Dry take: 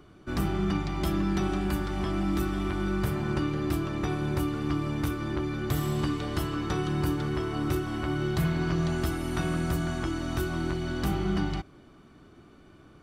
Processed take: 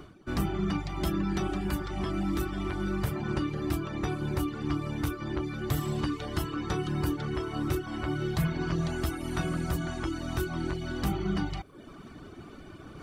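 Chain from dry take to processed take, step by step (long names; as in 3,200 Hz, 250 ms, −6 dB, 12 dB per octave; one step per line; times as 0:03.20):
reversed playback
upward compression, threshold −33 dBFS
reversed playback
reverb reduction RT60 0.8 s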